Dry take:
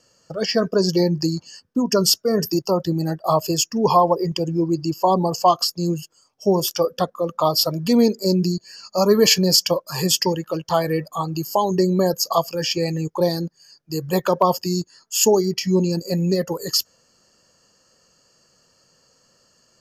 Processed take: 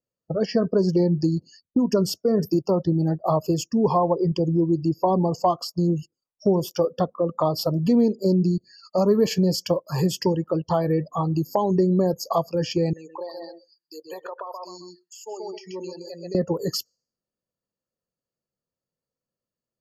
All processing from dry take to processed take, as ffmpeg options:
-filter_complex "[0:a]asettb=1/sr,asplit=3[a][b][c];[a]atrim=end=12.934[d];[b]atrim=start=12.93:end=16.35,asetpts=PTS-STARTPTS,afade=t=in:d=0.004:c=qsin,afade=t=out:st=3.416:d=0.004:c=qsin,highpass=930,asplit=2[e][f];[f]adelay=129,lowpass=f=4k:p=1,volume=-6dB,asplit=2[g][h];[h]adelay=129,lowpass=f=4k:p=1,volume=0.24,asplit=2[i][j];[j]adelay=129,lowpass=f=4k:p=1,volume=0.24[k];[e][g][i][k]amix=inputs=4:normalize=0,atrim=end_sample=150822,acompressor=threshold=-32dB:ratio=12:attack=3.2:release=140:knee=1:detection=peak[l];[c]atrim=start=16.346[m];[d][l]acrossfade=d=0.004:c1=hsin:c2=qsin[n];[n][m]acrossfade=d=0.004:c1=qsin:c2=hsin,afftdn=nr=33:nf=-40,tiltshelf=f=1.1k:g=8,acompressor=threshold=-23dB:ratio=2"

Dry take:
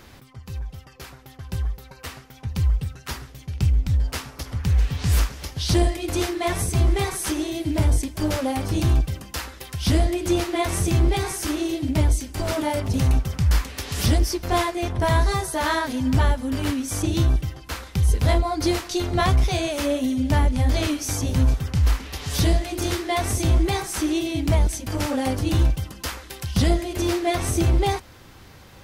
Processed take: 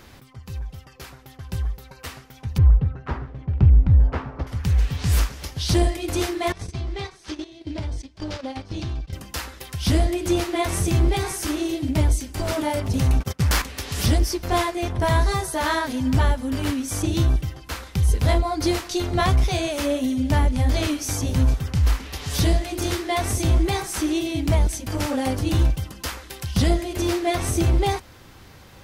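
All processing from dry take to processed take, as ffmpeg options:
-filter_complex "[0:a]asettb=1/sr,asplit=3[a][b][c];[a]atrim=end=2.584[d];[b]atrim=start=2.58:end=4.47,asetpts=PTS-STARTPTS,afade=t=in:d=0.004:c=qsin,afade=t=out:st=1.886:d=0.004:c=qsin,lowpass=1.2k,acontrast=64[e];[c]atrim=start=4.466[f];[d][e]acrossfade=d=0.004:c1=hsin:c2=qsin[g];[g][f]acrossfade=d=0.004:c1=qsin:c2=hsin,asettb=1/sr,asplit=3[h][i][j];[h]atrim=end=6.524[k];[i]atrim=start=6.52:end=9.13,asetpts=PTS-STARTPTS,afade=t=in:d=0.004:c=qsin,afade=t=out:st=2.606:d=0.004:c=qsin,agate=range=-17dB:threshold=-25dB:ratio=16:release=100:detection=peak,acompressor=threshold=-27dB:ratio=4:attack=3.2:release=140:knee=1:detection=peak,lowpass=f=4.7k:t=q:w=1.6[l];[j]atrim=start=9.126[m];[k][l]acrossfade=d=0.004:c1=hsin:c2=qsin[n];[n][m]acrossfade=d=0.004:c1=qsin:c2=hsin,asettb=1/sr,asplit=3[o][p][q];[o]atrim=end=13.204[r];[p]atrim=start=13.2:end=13.62,asetpts=PTS-STARTPTS,afade=t=in:d=0.004:c=qsin,afade=t=out:st=0.416:d=0.004:c=qsin,agate=range=-28dB:threshold=-26dB:ratio=16:release=100:detection=peak,highpass=f=230:p=1,aeval=exprs='0.188*sin(PI/2*2*val(0)/0.188)':c=same[s];[q]atrim=start=13.616[t];[r][s]acrossfade=d=0.004:c1=hsin:c2=qsin[u];[u][t]acrossfade=d=0.004:c1=qsin:c2=hsin"

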